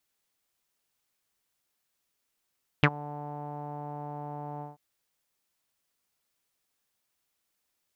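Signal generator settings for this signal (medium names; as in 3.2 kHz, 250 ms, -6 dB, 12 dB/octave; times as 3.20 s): synth note saw D3 12 dB/octave, low-pass 820 Hz, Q 7, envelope 2 oct, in 0.06 s, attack 1.6 ms, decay 0.06 s, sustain -23.5 dB, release 0.16 s, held 1.78 s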